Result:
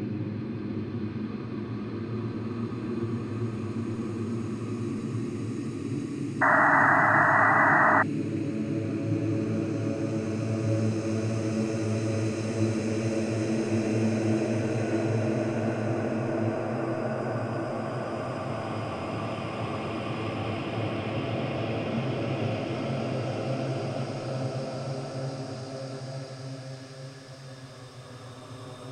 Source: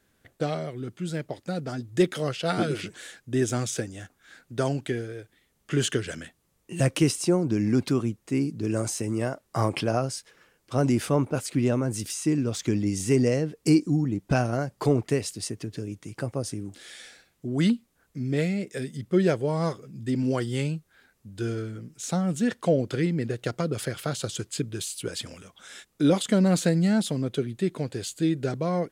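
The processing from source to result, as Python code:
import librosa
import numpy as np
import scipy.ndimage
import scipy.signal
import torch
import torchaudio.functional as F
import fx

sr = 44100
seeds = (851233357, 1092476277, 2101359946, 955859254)

y = fx.rattle_buzz(x, sr, strikes_db=-30.0, level_db=-31.0)
y = fx.env_lowpass_down(y, sr, base_hz=1500.0, full_db=-22.0)
y = fx.over_compress(y, sr, threshold_db=-28.0, ratio=-0.5)
y = fx.paulstretch(y, sr, seeds[0], factor=10.0, window_s=1.0, from_s=7.67)
y = fx.spec_paint(y, sr, seeds[1], shape='noise', start_s=6.41, length_s=1.62, low_hz=600.0, high_hz=2000.0, level_db=-21.0)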